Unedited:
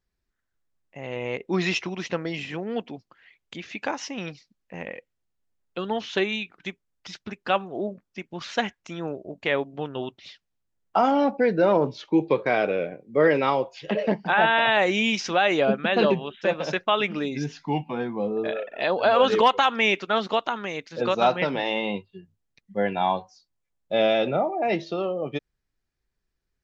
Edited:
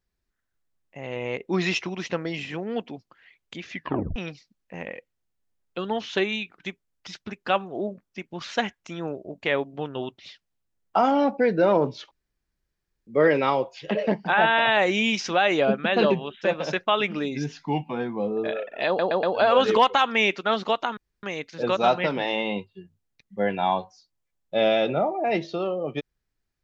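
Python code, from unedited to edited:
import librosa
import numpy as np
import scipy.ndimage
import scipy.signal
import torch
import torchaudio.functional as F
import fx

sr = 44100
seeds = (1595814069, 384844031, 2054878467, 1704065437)

y = fx.edit(x, sr, fx.tape_stop(start_s=3.71, length_s=0.45),
    fx.room_tone_fill(start_s=12.11, length_s=0.96),
    fx.stutter(start_s=18.87, slice_s=0.12, count=4),
    fx.insert_room_tone(at_s=20.61, length_s=0.26), tone=tone)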